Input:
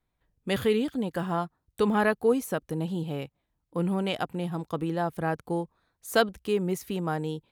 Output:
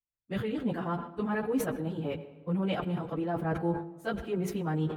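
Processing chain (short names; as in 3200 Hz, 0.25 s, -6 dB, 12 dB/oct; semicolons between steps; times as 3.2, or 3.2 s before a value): expander -45 dBFS; tone controls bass +3 dB, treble -14 dB; reverse; compressor 10:1, threshold -31 dBFS, peak gain reduction 15 dB; reverse; plain phase-vocoder stretch 0.66×; on a send at -15.5 dB: reverb RT60 1.6 s, pre-delay 79 ms; on the sum: sustainer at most 100 dB/s; gain +7 dB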